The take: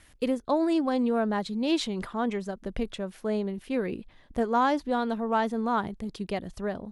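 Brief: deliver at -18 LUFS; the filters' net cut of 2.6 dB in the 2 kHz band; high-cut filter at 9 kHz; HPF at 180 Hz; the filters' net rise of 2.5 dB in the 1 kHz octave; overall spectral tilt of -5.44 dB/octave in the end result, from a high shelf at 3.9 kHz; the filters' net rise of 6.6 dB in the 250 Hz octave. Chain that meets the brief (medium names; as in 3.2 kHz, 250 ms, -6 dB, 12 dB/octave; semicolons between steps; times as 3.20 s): high-pass 180 Hz; low-pass 9 kHz; peaking EQ 250 Hz +9 dB; peaking EQ 1 kHz +3.5 dB; peaking EQ 2 kHz -7 dB; treble shelf 3.9 kHz +6.5 dB; trim +6 dB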